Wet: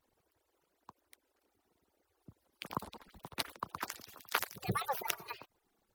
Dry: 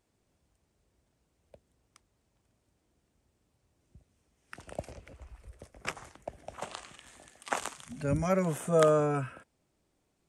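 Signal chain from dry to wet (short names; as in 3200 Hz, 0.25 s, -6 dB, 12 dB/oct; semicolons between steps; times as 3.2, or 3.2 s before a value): median-filter separation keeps percussive; wide varispeed 1.73×; dynamic EQ 2300 Hz, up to -5 dB, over -51 dBFS, Q 1; gain +3 dB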